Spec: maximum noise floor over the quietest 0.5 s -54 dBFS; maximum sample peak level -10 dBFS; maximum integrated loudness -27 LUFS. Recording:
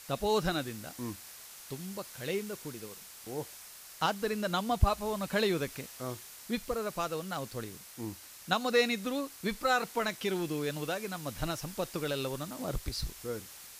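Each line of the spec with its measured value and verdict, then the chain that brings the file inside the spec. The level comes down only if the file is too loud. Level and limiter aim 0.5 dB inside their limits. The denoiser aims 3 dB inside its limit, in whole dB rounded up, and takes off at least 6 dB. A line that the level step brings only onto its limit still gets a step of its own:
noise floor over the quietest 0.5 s -50 dBFS: fail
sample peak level -11.5 dBFS: OK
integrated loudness -34.0 LUFS: OK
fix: denoiser 7 dB, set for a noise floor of -50 dBFS

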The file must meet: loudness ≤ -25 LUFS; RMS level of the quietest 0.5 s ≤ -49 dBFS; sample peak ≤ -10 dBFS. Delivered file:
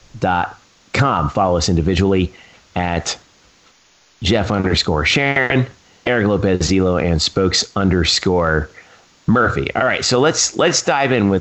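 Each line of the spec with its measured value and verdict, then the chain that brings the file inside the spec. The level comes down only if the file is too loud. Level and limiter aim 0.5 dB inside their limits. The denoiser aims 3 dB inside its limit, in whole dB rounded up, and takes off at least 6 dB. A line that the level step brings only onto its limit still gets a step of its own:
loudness -16.5 LUFS: fail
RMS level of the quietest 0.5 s -53 dBFS: OK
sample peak -4.5 dBFS: fail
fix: gain -9 dB

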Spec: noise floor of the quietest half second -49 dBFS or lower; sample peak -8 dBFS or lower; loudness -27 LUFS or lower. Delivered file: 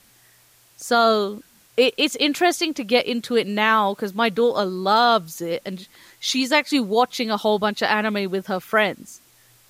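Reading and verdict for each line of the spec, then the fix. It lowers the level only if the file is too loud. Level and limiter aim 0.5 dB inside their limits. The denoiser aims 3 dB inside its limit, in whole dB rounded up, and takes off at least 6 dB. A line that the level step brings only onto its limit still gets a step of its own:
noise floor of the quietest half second -55 dBFS: OK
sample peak -5.5 dBFS: fail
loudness -20.5 LUFS: fail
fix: gain -7 dB

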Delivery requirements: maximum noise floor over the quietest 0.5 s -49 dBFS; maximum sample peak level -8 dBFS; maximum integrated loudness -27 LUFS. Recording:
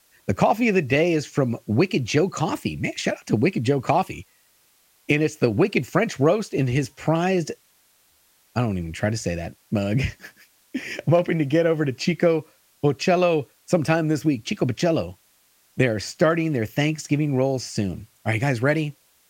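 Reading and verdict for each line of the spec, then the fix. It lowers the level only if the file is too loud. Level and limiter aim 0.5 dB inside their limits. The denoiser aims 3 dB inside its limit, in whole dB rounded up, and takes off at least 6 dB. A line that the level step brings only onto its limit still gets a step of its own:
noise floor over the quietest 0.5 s -61 dBFS: OK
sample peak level -5.0 dBFS: fail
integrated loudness -23.0 LUFS: fail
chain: gain -4.5 dB

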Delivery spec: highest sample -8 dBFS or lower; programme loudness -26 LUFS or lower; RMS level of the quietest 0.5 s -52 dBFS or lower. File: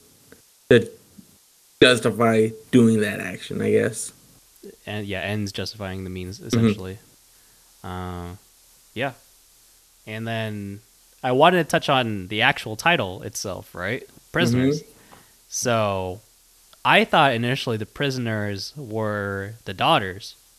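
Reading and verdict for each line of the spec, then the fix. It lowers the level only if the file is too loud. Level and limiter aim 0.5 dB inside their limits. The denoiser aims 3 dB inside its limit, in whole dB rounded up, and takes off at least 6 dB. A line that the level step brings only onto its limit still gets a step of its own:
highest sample -1.5 dBFS: fail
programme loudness -22.0 LUFS: fail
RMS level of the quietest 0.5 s -56 dBFS: OK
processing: gain -4.5 dB; limiter -8.5 dBFS

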